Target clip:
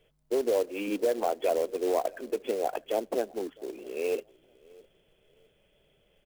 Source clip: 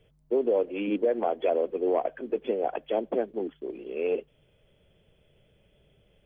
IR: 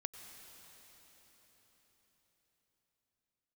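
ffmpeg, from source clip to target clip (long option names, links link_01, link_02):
-filter_complex "[0:a]equalizer=frequency=86:width=0.46:gain=-11,asplit=2[link_01][link_02];[link_02]adelay=657,lowpass=frequency=1200:poles=1,volume=-23.5dB,asplit=2[link_03][link_04];[link_04]adelay=657,lowpass=frequency=1200:poles=1,volume=0.26[link_05];[link_01][link_03][link_05]amix=inputs=3:normalize=0,acrusher=bits=4:mode=log:mix=0:aa=0.000001"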